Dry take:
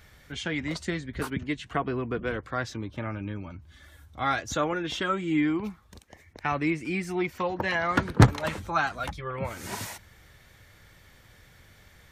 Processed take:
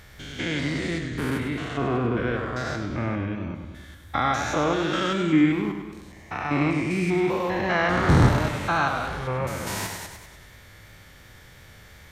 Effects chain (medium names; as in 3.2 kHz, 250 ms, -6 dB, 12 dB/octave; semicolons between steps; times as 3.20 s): spectrogram pixelated in time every 200 ms; modulated delay 99 ms, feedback 57%, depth 99 cents, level -7 dB; trim +7 dB